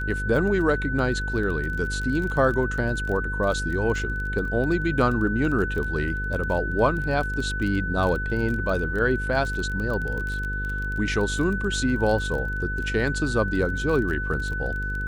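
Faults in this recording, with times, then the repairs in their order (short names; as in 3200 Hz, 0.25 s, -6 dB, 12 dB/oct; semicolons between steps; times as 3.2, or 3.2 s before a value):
buzz 50 Hz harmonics 10 -30 dBFS
crackle 22/s -29 dBFS
tone 1500 Hz -29 dBFS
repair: de-click; de-hum 50 Hz, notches 10; notch 1500 Hz, Q 30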